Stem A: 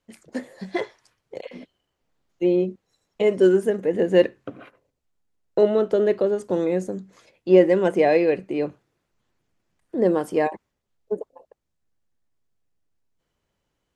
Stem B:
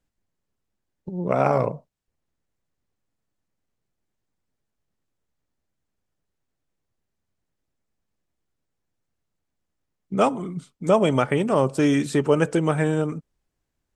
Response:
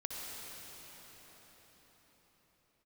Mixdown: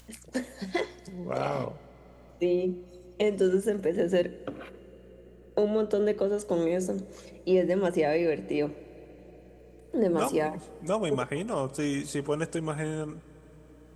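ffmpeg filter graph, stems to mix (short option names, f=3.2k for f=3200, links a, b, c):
-filter_complex "[0:a]bandreject=f=60:t=h:w=6,bandreject=f=120:t=h:w=6,bandreject=f=180:t=h:w=6,bandreject=f=240:t=h:w=6,bandreject=f=300:t=h:w=6,bandreject=f=360:t=h:w=6,acrossover=split=220[a][b];[b]acompressor=threshold=-24dB:ratio=4[c];[a][c]amix=inputs=2:normalize=0,volume=-1.5dB,asplit=2[d][e];[e]volume=-19dB[f];[1:a]volume=-11dB,asplit=2[g][h];[h]volume=-20.5dB[i];[2:a]atrim=start_sample=2205[j];[f][i]amix=inputs=2:normalize=0[k];[k][j]afir=irnorm=-1:irlink=0[l];[d][g][l]amix=inputs=3:normalize=0,acompressor=mode=upward:threshold=-49dB:ratio=2.5,aeval=exprs='val(0)+0.00178*(sin(2*PI*60*n/s)+sin(2*PI*2*60*n/s)/2+sin(2*PI*3*60*n/s)/3+sin(2*PI*4*60*n/s)/4+sin(2*PI*5*60*n/s)/5)':c=same,highshelf=f=4.5k:g=10"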